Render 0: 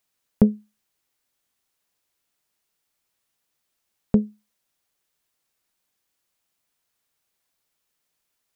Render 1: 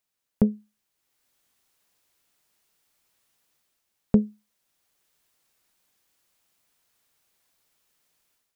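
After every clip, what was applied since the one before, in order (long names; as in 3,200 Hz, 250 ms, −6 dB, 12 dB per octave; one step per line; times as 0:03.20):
automatic gain control gain up to 11 dB
level −5.5 dB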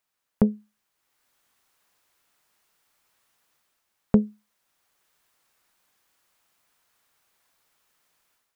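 parametric band 1,200 Hz +6.5 dB 1.9 octaves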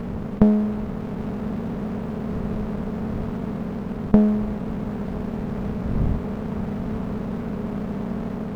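compressor on every frequency bin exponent 0.2
wind on the microphone 110 Hz −35 dBFS
windowed peak hold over 33 samples
level +2 dB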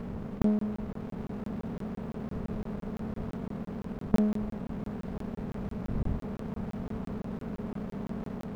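regular buffer underruns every 0.17 s, samples 1,024, zero, from 0:00.42
level −8.5 dB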